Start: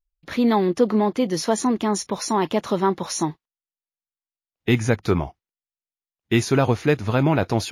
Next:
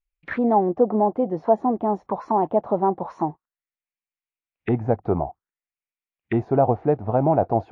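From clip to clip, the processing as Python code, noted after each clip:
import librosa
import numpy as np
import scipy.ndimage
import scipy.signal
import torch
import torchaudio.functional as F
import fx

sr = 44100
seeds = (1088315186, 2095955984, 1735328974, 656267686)

y = fx.envelope_lowpass(x, sr, base_hz=740.0, top_hz=2400.0, q=4.0, full_db=-20.5, direction='down')
y = F.gain(torch.from_numpy(y), -4.0).numpy()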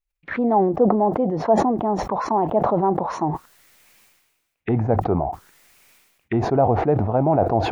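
y = fx.sustainer(x, sr, db_per_s=45.0)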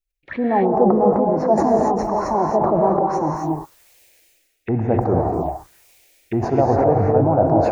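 y = fx.env_phaser(x, sr, low_hz=170.0, high_hz=3300.0, full_db=-23.5)
y = fx.rev_gated(y, sr, seeds[0], gate_ms=300, shape='rising', drr_db=0.0)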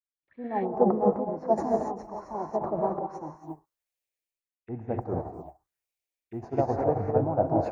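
y = fx.upward_expand(x, sr, threshold_db=-32.0, expansion=2.5)
y = F.gain(torch.from_numpy(y), -4.5).numpy()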